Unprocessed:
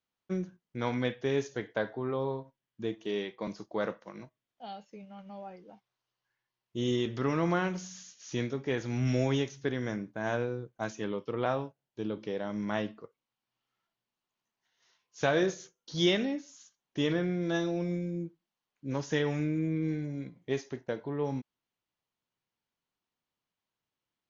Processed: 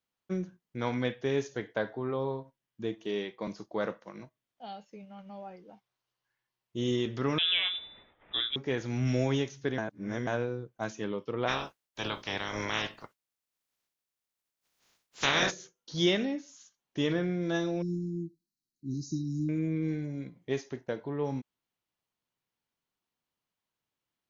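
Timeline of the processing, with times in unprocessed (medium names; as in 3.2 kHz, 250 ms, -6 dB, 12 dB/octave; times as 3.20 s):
7.38–8.56 s: frequency inversion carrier 3.7 kHz
9.78–10.27 s: reverse
11.47–15.50 s: spectral peaks clipped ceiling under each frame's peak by 28 dB
17.82–19.49 s: brick-wall FIR band-stop 390–3800 Hz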